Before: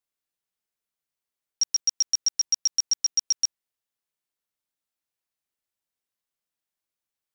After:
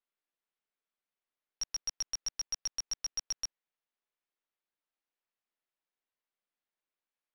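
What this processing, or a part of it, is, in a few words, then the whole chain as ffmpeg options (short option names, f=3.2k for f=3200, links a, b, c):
crystal radio: -af "highpass=230,lowpass=3.1k,aeval=exprs='if(lt(val(0),0),0.708*val(0),val(0))':c=same"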